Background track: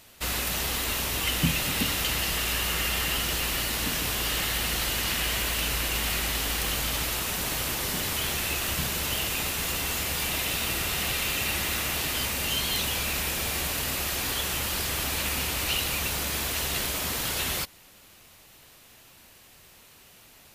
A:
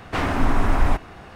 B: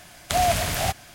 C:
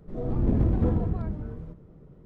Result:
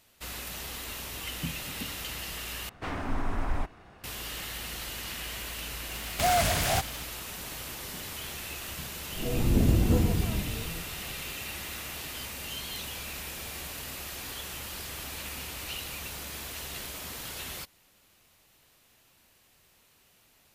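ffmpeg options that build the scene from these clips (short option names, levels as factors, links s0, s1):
-filter_complex "[0:a]volume=0.316[s0];[2:a]aeval=exprs='0.133*(abs(mod(val(0)/0.133+3,4)-2)-1)':c=same[s1];[s0]asplit=2[s2][s3];[s2]atrim=end=2.694[s4];[1:a]atrim=end=1.35,asetpts=PTS-STARTPTS,volume=0.266[s5];[s3]atrim=start=4.036[s6];[s1]atrim=end=1.14,asetpts=PTS-STARTPTS,volume=0.841,afade=t=in:d=0.004:c=hsin,afade=t=out:st=1.136:d=0.004:c=hsin,adelay=259749S[s7];[3:a]atrim=end=2.25,asetpts=PTS-STARTPTS,afade=t=in:d=0.004:c=hsin,afade=t=out:st=2.246:d=0.004:c=hsin,adelay=9080[s8];[s4][s5]acrossfade=d=0.004:c1=hsin:c2=hsin[s9];[s9][s6]acrossfade=d=0.004:c1=hsin:c2=hsin[s10];[s10][s7][s8]amix=inputs=3:normalize=0"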